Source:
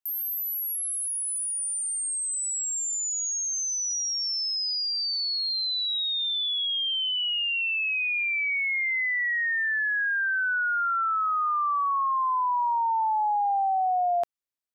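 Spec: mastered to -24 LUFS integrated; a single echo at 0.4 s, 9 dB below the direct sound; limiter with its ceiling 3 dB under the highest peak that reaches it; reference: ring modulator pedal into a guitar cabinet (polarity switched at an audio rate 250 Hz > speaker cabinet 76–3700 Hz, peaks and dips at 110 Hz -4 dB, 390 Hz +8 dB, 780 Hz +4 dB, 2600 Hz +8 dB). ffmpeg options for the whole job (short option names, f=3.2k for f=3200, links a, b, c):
-af "alimiter=limit=-24dB:level=0:latency=1,aecho=1:1:400:0.355,aeval=exprs='val(0)*sgn(sin(2*PI*250*n/s))':c=same,highpass=76,equalizer=f=110:t=q:w=4:g=-4,equalizer=f=390:t=q:w=4:g=8,equalizer=f=780:t=q:w=4:g=4,equalizer=f=2.6k:t=q:w=4:g=8,lowpass=f=3.7k:w=0.5412,lowpass=f=3.7k:w=1.3066,volume=-1dB"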